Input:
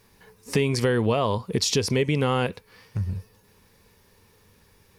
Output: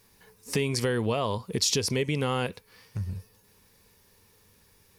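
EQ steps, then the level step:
high-shelf EQ 4,200 Hz +7.5 dB
−5.0 dB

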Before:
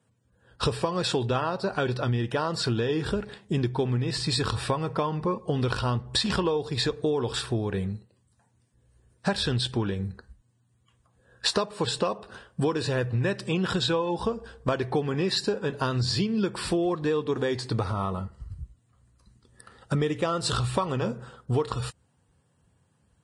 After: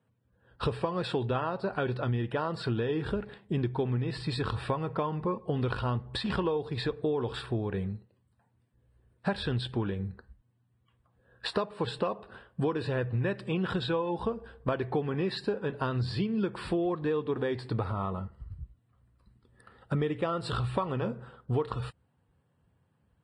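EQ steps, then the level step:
moving average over 7 samples
−3.5 dB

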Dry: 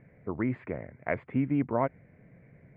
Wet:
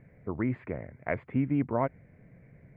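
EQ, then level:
low-shelf EQ 81 Hz +8 dB
−1.0 dB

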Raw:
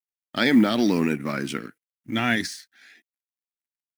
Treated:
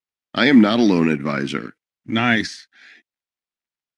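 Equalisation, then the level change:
low-pass filter 5,100 Hz 12 dB per octave
+5.5 dB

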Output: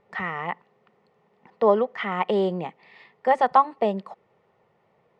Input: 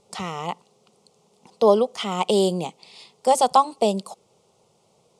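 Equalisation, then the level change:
low-pass with resonance 1,800 Hz, resonance Q 11
−3.5 dB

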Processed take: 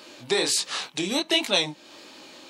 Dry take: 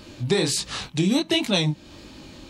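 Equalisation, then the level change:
high-pass filter 450 Hz 12 dB per octave
+1.5 dB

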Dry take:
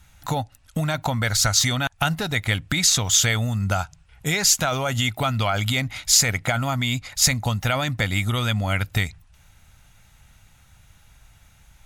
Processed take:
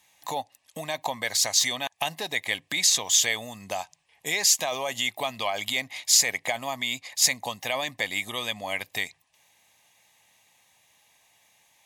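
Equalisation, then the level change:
high-pass filter 430 Hz 12 dB per octave
Butterworth band-reject 1,400 Hz, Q 3
−2.5 dB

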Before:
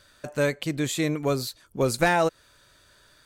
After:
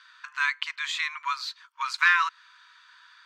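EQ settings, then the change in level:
linear-phase brick-wall high-pass 920 Hz
high-frequency loss of the air 200 metres
+8.0 dB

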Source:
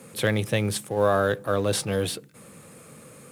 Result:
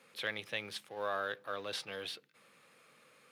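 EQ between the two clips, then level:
high-frequency loss of the air 310 metres
first difference
+6.0 dB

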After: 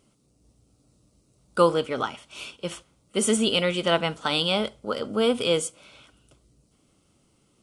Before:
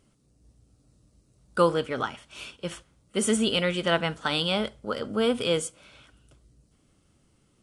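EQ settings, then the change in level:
low-shelf EQ 120 Hz −9 dB
parametric band 1,700 Hz −8.5 dB 0.33 octaves
+3.0 dB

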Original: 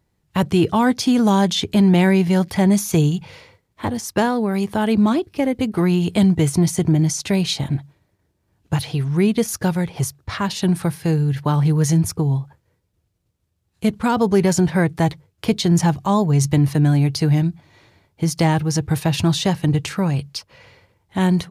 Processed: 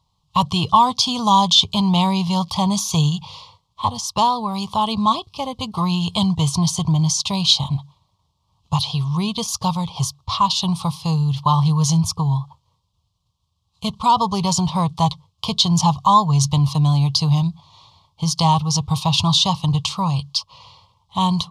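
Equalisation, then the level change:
drawn EQ curve 160 Hz 0 dB, 330 Hz −17 dB, 640 Hz −4 dB, 1,100 Hz +14 dB, 1,600 Hz −28 dB, 3,200 Hz +10 dB, 4,700 Hz +9 dB, 13,000 Hz −8 dB
0.0 dB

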